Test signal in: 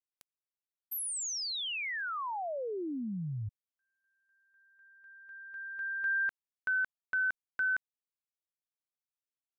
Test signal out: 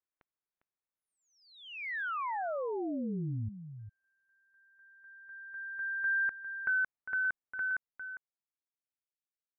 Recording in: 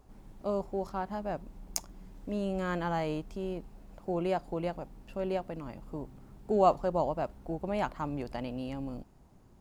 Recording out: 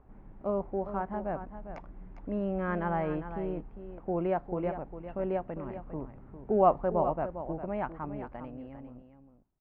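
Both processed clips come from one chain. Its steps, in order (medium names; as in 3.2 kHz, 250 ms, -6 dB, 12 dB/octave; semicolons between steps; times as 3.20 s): fade out at the end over 2.55 s; low-pass 2.1 kHz 24 dB/octave; on a send: delay 403 ms -10.5 dB; on the sum: trim +1 dB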